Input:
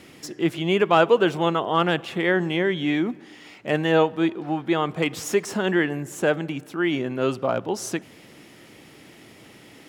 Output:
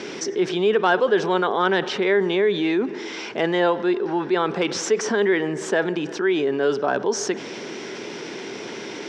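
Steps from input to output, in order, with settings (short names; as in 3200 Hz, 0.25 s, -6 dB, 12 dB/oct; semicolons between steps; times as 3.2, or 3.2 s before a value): speed mistake 44.1 kHz file played as 48 kHz; speaker cabinet 190–6400 Hz, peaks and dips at 220 Hz +3 dB, 410 Hz +10 dB, 960 Hz +4 dB, 1600 Hz +7 dB, 5500 Hz +8 dB; fast leveller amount 50%; gain -7 dB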